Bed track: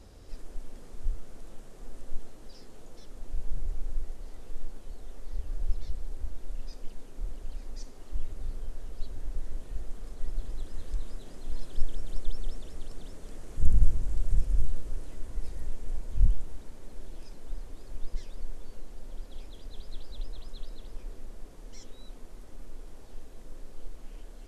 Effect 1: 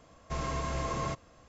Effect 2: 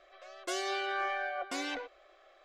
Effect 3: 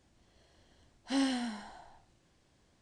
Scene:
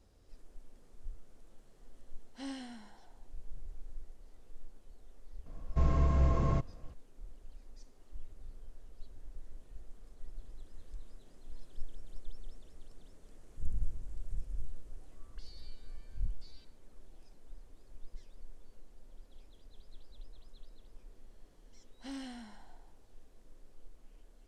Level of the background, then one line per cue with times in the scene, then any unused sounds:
bed track -13.5 dB
1.28 add 3 -12 dB
5.46 add 1 -4 dB + tilt -3.5 dB/oct
14.9 add 2 -9 dB + auto-wah 620–4500 Hz, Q 12, up, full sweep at -36.5 dBFS
20.94 add 3 -10.5 dB + soft clip -26.5 dBFS

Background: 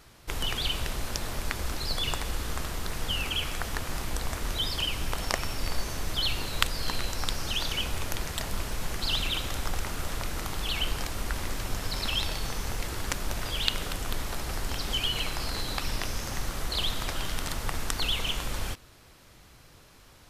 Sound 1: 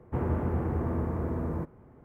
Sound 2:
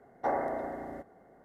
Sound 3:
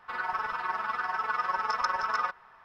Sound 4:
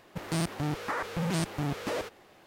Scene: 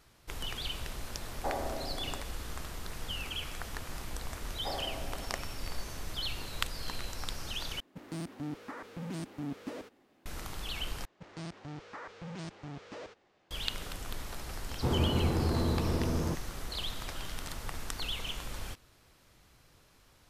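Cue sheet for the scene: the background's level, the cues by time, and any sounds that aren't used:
background -8 dB
1.2 add 2 -3.5 dB + air absorption 480 m
4.41 add 2 -9 dB
7.8 replace with 4 -13 dB + bell 260 Hz +13.5 dB 0.65 oct
11.05 replace with 4 -12.5 dB + LPF 7100 Hz 24 dB/oct
14.7 add 1
not used: 3

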